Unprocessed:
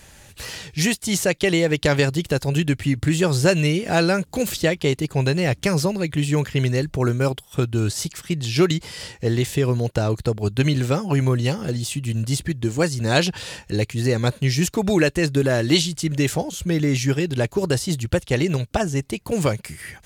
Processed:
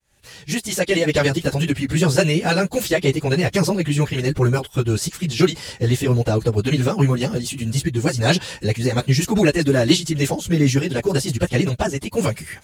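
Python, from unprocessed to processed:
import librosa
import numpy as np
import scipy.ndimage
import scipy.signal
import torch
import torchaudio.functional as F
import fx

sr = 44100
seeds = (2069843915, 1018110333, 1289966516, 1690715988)

y = fx.fade_in_head(x, sr, length_s=1.52)
y = fx.stretch_vocoder_free(y, sr, factor=0.63)
y = y * librosa.db_to_amplitude(5.5)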